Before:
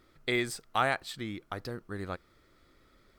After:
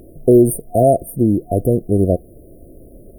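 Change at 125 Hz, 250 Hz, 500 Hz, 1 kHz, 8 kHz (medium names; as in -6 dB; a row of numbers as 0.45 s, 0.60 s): +23.5 dB, +23.0 dB, +22.5 dB, +10.0 dB, +15.0 dB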